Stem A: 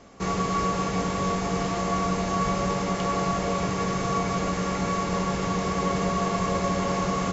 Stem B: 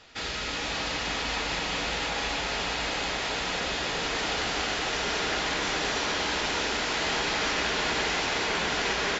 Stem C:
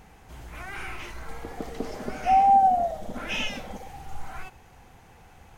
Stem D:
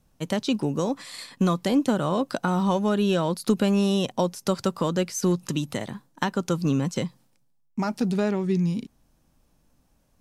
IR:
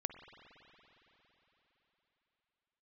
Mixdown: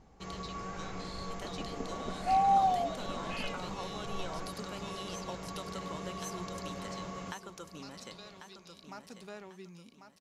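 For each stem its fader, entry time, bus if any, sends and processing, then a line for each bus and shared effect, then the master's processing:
−16.5 dB, 0.00 s, no bus, no send, echo send −14 dB, no processing
muted
−8.0 dB, 0.00 s, no bus, no send, no echo send, low-pass that shuts in the quiet parts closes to 820 Hz, open at −17 dBFS
−2.0 dB, 0.00 s, bus A, send −20 dB, echo send −12 dB, high-pass filter 990 Hz 6 dB per octave
bus A: 0.0 dB, resonant band-pass 4,200 Hz, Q 3.9; downward compressor, threshold −49 dBFS, peak gain reduction 12 dB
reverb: on, RT60 4.1 s, pre-delay 46 ms
echo: repeating echo 1,094 ms, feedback 35%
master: no processing

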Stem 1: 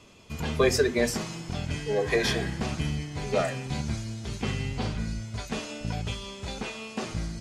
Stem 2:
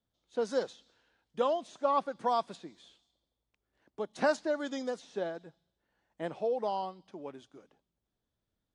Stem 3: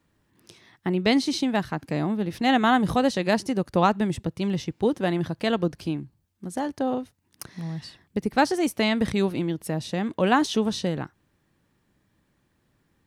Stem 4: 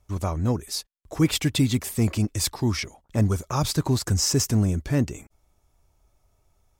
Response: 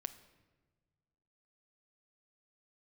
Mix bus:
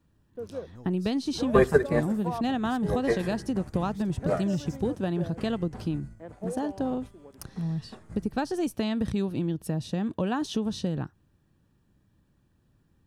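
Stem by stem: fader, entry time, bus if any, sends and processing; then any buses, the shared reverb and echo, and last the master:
+1.5 dB, 0.95 s, send −5.5 dB, flat-topped bell 3,900 Hz −15 dB; expander for the loud parts 2.5 to 1, over −35 dBFS
−3.5 dB, 0.00 s, no send, hold until the input has moved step −45 dBFS; Bessel low-pass filter 1,200 Hz, order 2; rotating-speaker cabinet horn 0.75 Hz
−5.0 dB, 0.00 s, no send, low-shelf EQ 230 Hz +11.5 dB; notch filter 2,100 Hz, Q 5.2; downward compressor 6 to 1, threshold −19 dBFS, peak gain reduction 8 dB
−19.5 dB, 0.30 s, no send, automatic ducking −8 dB, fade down 1.40 s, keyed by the third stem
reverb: on, pre-delay 7 ms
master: no processing

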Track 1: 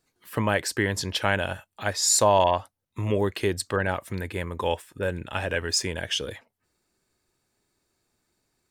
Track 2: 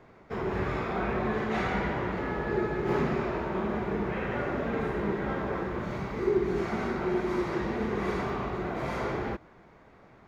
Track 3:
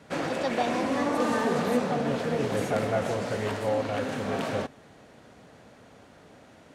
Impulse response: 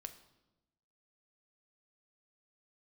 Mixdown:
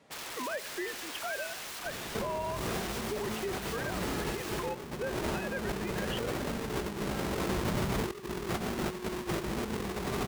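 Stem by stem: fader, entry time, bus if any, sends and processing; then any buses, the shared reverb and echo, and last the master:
−10.5 dB, 0.00 s, bus A, send −3.5 dB, three sine waves on the formant tracks
−0.5 dB, 1.85 s, no bus, no send, each half-wave held at its own peak; compressor whose output falls as the input rises −31 dBFS, ratio −0.5
−7.0 dB, 0.00 s, bus A, no send, notch filter 1,500 Hz, Q 6.6; wrap-around overflow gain 29.5 dB
bus A: 0.0 dB, low-shelf EQ 200 Hz −9 dB; downward compressor 2 to 1, threshold −34 dBFS, peak gain reduction 5.5 dB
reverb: on, RT60 1.0 s, pre-delay 3 ms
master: brickwall limiter −26.5 dBFS, peak gain reduction 8.5 dB

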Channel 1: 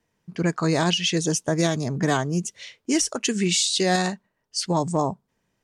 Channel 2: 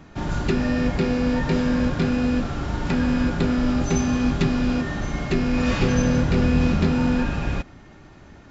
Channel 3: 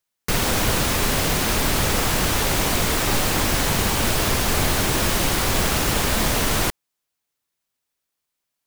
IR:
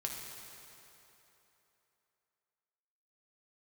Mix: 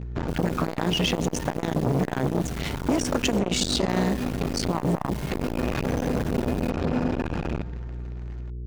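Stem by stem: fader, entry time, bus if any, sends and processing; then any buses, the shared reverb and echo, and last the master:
+0.5 dB, 0.00 s, bus A, send −12 dB, bass and treble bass +11 dB, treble −9 dB
−2.5 dB, 0.00 s, bus A, send −13 dB, high-shelf EQ 3,900 Hz −7 dB; automatic ducking −11 dB, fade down 0.35 s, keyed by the first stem
−12.5 dB, 0.00 s, muted 0:03.39–0:03.89, no bus, no send, four-pole ladder high-pass 1,600 Hz, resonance 25%
bus A: 0.0 dB, leveller curve on the samples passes 3; downward compressor 10 to 1, threshold −19 dBFS, peak gain reduction 12 dB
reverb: on, RT60 3.3 s, pre-delay 4 ms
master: mains hum 60 Hz, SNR 11 dB; saturating transformer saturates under 640 Hz

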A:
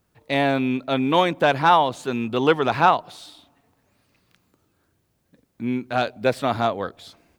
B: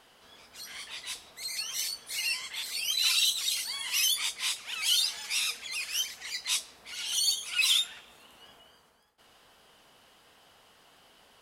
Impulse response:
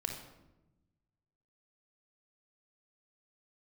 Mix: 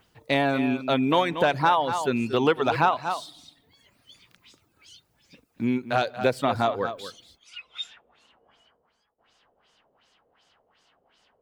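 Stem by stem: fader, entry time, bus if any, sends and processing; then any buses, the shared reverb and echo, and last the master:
+2.0 dB, 0.00 s, send −23.5 dB, echo send −13 dB, reverb reduction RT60 0.85 s
−7.5 dB, 0.00 s, no send, no echo send, auto-filter low-pass sine 2.7 Hz 500–7,000 Hz; automatic ducking −20 dB, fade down 0.35 s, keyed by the first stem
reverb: on, RT60 1.0 s, pre-delay 27 ms
echo: single-tap delay 233 ms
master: downward compressor 2.5 to 1, threshold −20 dBFS, peak gain reduction 8 dB

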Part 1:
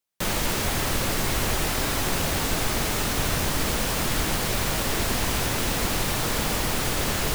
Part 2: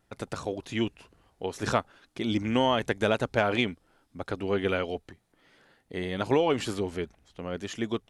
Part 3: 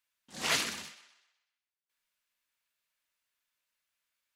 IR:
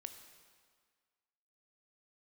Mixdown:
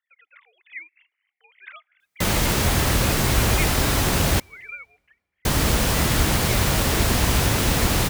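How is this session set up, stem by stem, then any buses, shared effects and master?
+3.0 dB, 2.00 s, muted 0:04.40–0:05.45, send −18.5 dB, high-pass filter 49 Hz
−9.5 dB, 0.00 s, send −22.5 dB, three sine waves on the formant tracks; high-pass with resonance 2,100 Hz, resonance Q 7.2
muted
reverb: on, RT60 1.7 s, pre-delay 15 ms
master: low-shelf EQ 120 Hz +10 dB

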